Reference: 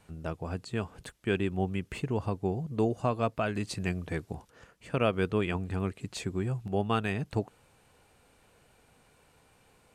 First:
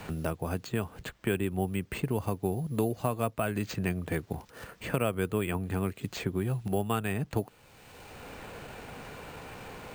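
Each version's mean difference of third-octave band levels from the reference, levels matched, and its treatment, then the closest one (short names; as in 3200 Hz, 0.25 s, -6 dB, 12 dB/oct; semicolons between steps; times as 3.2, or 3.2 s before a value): 7.0 dB: careless resampling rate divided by 4×, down none, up hold; three-band squash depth 70%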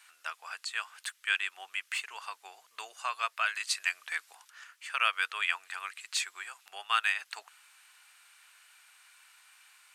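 17.0 dB: HPF 1300 Hz 24 dB/oct; gain +8.5 dB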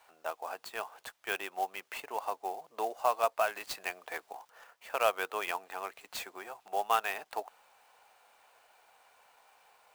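11.5 dB: ladder high-pass 630 Hz, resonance 40%; clock jitter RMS 0.021 ms; gain +8.5 dB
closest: first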